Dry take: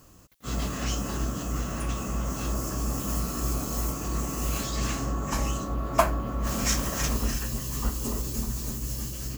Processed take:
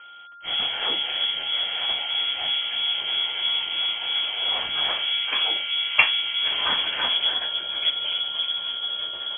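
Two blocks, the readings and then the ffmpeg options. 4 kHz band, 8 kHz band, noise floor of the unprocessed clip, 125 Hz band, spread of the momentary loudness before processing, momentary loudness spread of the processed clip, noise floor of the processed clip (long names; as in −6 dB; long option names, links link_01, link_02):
+20.5 dB, below −40 dB, −38 dBFS, below −25 dB, 6 LU, 4 LU, −36 dBFS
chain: -af "aeval=exprs='val(0)+0.00282*sin(2*PI*2000*n/s)':channel_layout=same,aexciter=amount=2.5:drive=3.6:freq=2000,lowpass=frequency=2900:width_type=q:width=0.5098,lowpass=frequency=2900:width_type=q:width=0.6013,lowpass=frequency=2900:width_type=q:width=0.9,lowpass=frequency=2900:width_type=q:width=2.563,afreqshift=-3400,volume=3.5dB"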